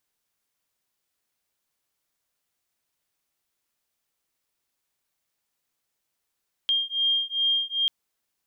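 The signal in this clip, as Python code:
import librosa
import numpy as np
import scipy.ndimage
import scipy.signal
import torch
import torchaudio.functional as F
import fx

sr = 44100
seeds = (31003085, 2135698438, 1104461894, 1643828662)

y = fx.two_tone_beats(sr, length_s=1.19, hz=3210.0, beat_hz=2.5, level_db=-25.0)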